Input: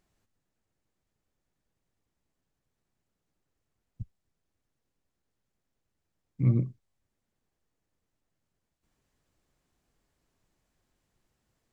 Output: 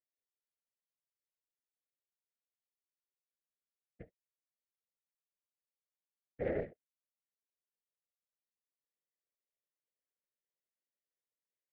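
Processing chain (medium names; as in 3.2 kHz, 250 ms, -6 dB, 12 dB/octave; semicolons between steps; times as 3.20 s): flange 0.82 Hz, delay 5.6 ms, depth 5.6 ms, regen +76%; waveshaping leveller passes 5; two resonant band-passes 1 kHz, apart 1.9 oct; distance through air 200 m; whisper effect; upward expansion 1.5:1, over -52 dBFS; trim +5.5 dB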